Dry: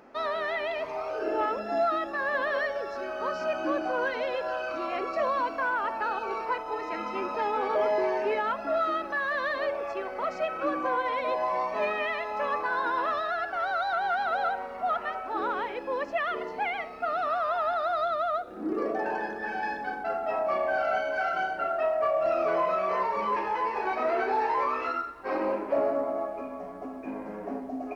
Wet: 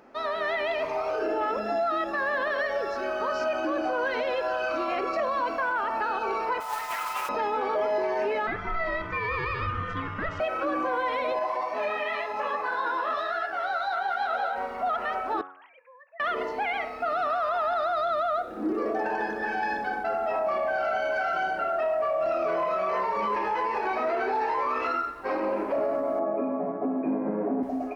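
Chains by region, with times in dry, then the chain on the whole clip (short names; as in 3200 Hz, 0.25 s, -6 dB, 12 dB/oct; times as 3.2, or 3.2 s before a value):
6.6–7.29 HPF 800 Hz 24 dB/oct + modulation noise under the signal 12 dB + Doppler distortion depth 0.17 ms
8.47–10.4 high shelf 5000 Hz -11.5 dB + ring modulator 660 Hz
11.39–14.56 HPF 58 Hz + bell 140 Hz -8.5 dB 1.1 oct + detuned doubles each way 36 cents
15.41–16.2 sine-wave speech + differentiator + compressor 3:1, threshold -55 dBFS
26.19–27.63 Chebyshev band-pass 130–2600 Hz, order 4 + tilt shelf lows +9 dB, about 1300 Hz
whole clip: AGC gain up to 5 dB; de-hum 92.84 Hz, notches 30; limiter -20 dBFS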